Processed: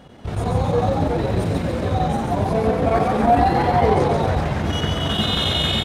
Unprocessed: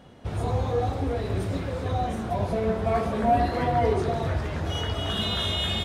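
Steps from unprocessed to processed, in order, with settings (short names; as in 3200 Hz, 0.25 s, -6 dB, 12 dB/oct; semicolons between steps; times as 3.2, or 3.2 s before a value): chopper 11 Hz, depth 65%, duty 85%; frequency-shifting echo 0.14 s, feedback 48%, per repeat +64 Hz, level -4 dB; gain +5.5 dB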